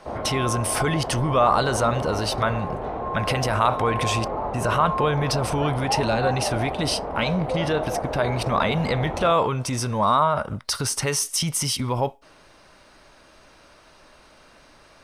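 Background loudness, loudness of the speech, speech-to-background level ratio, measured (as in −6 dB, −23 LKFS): −29.0 LKFS, −24.0 LKFS, 5.0 dB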